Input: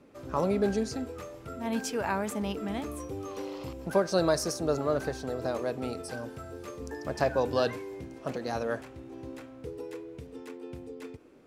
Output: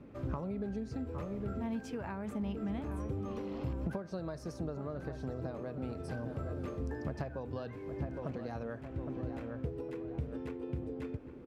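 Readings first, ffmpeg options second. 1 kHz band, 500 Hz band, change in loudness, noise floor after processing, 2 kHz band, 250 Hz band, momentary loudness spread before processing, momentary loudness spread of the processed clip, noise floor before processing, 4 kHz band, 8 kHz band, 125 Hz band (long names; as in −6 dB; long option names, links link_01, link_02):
−11.5 dB, −10.5 dB, −8.0 dB, −48 dBFS, −11.5 dB, −4.0 dB, 16 LU, 3 LU, −49 dBFS, −17.5 dB, −21.0 dB, +0.5 dB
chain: -filter_complex "[0:a]asplit=2[link_01][link_02];[link_02]adelay=811,lowpass=frequency=2000:poles=1,volume=-14dB,asplit=2[link_03][link_04];[link_04]adelay=811,lowpass=frequency=2000:poles=1,volume=0.46,asplit=2[link_05][link_06];[link_06]adelay=811,lowpass=frequency=2000:poles=1,volume=0.46,asplit=2[link_07][link_08];[link_08]adelay=811,lowpass=frequency=2000:poles=1,volume=0.46[link_09];[link_03][link_05][link_07][link_09]amix=inputs=4:normalize=0[link_10];[link_01][link_10]amix=inputs=2:normalize=0,acompressor=threshold=-39dB:ratio=12,bass=frequency=250:gain=11,treble=frequency=4000:gain=-12"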